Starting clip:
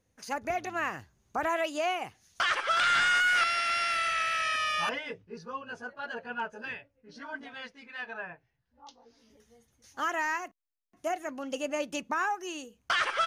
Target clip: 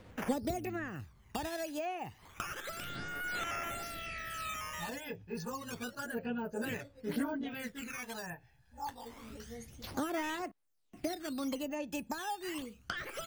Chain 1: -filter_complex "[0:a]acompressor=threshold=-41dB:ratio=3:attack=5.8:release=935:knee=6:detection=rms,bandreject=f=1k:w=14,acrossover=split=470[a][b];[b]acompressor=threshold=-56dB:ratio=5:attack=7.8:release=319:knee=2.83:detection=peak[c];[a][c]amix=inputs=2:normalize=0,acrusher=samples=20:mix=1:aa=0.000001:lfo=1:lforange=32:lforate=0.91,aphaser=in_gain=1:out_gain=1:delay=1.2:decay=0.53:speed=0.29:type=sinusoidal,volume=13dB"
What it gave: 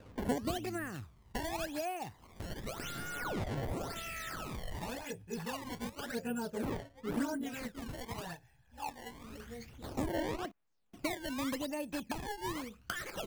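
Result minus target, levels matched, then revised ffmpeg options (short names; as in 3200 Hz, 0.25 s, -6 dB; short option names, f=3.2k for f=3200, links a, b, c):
decimation with a swept rate: distortion +8 dB
-filter_complex "[0:a]acompressor=threshold=-41dB:ratio=3:attack=5.8:release=935:knee=6:detection=rms,bandreject=f=1k:w=14,acrossover=split=470[a][b];[b]acompressor=threshold=-56dB:ratio=5:attack=7.8:release=319:knee=2.83:detection=peak[c];[a][c]amix=inputs=2:normalize=0,acrusher=samples=6:mix=1:aa=0.000001:lfo=1:lforange=9.6:lforate=0.91,aphaser=in_gain=1:out_gain=1:delay=1.2:decay=0.53:speed=0.29:type=sinusoidal,volume=13dB"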